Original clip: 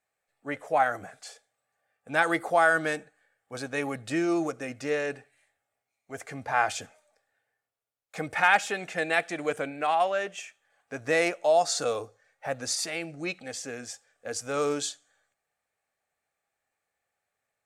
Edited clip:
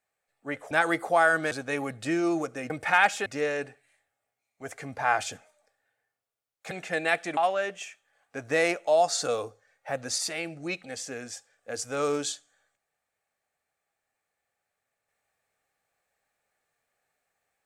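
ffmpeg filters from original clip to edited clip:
-filter_complex "[0:a]asplit=7[a][b][c][d][e][f][g];[a]atrim=end=0.712[h];[b]atrim=start=2.118:end=2.922[i];[c]atrim=start=3.558:end=4.752[j];[d]atrim=start=8.198:end=8.762[k];[e]atrim=start=4.748:end=8.202[l];[f]atrim=start=8.758:end=9.422[m];[g]atrim=start=9.938[n];[h][i]acrossfade=d=0.004:c1=hsin:c2=hsin[o];[o][j]acrossfade=d=0.004:c1=hsin:c2=hsin[p];[p][k]acrossfade=d=0.004:c1=hsin:c2=hsin[q];[q][l]acrossfade=d=0.004:c1=hsin:c2=hsin[r];[r][m]acrossfade=d=0.004:c1=hsin:c2=hsin[s];[s][n]acrossfade=d=0.004:c1=hsin:c2=hsin"

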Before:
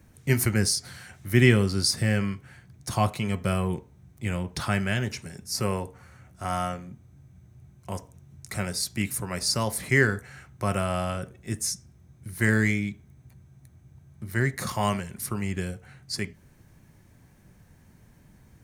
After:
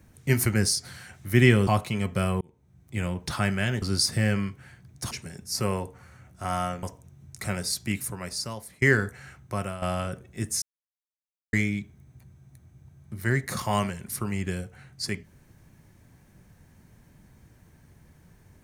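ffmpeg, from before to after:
-filter_complex "[0:a]asplit=10[a][b][c][d][e][f][g][h][i][j];[a]atrim=end=1.672[k];[b]atrim=start=2.958:end=3.7,asetpts=PTS-STARTPTS,afade=t=out:st=0.738:d=0.004:c=hsin[l];[c]atrim=start=3.7:end=5.112,asetpts=PTS-STARTPTS,afade=t=in:d=0.6[m];[d]atrim=start=1.668:end=2.962[n];[e]atrim=start=5.108:end=6.832[o];[f]atrim=start=7.928:end=9.92,asetpts=PTS-STARTPTS,afade=t=out:st=0.992:d=1:silence=0.0749894[p];[g]atrim=start=9.92:end=10.92,asetpts=PTS-STARTPTS,afade=t=in:d=0.004:c=hsin:silence=0.0749894,afade=t=out:st=0.57:d=0.43:silence=0.237137[q];[h]atrim=start=10.92:end=11.72,asetpts=PTS-STARTPTS,afade=t=in:d=0.004:c=hsin:silence=0.237137,afade=t=out:st=0.796:d=0.004:c=hsin[r];[i]atrim=start=11.72:end=12.63,asetpts=PTS-STARTPTS,volume=0[s];[j]atrim=start=12.63,asetpts=PTS-STARTPTS,afade=t=in:d=0.004:c=hsin[t];[l][m]concat=n=2:v=0:a=1[u];[k][u]acrossfade=d=0.004:c1=hsin:c2=hsin[v];[v][n]acrossfade=d=0.004:c1=hsin:c2=hsin[w];[w][o]acrossfade=d=0.004:c1=hsin:c2=hsin[x];[p][q][r][s][t]concat=n=5:v=0:a=1[y];[x][y]acrossfade=d=0.004:c1=hsin:c2=hsin"

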